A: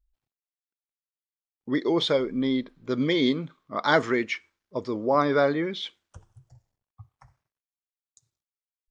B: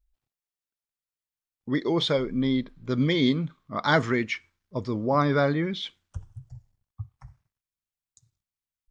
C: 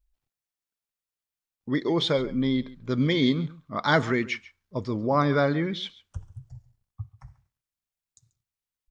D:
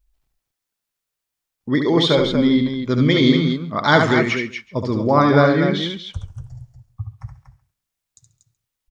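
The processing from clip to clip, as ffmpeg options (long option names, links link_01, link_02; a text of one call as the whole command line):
ffmpeg -i in.wav -af "asubboost=boost=4.5:cutoff=180" out.wav
ffmpeg -i in.wav -af "aecho=1:1:138:0.106" out.wav
ffmpeg -i in.wav -af "aecho=1:1:72|238:0.531|0.422,volume=7dB" out.wav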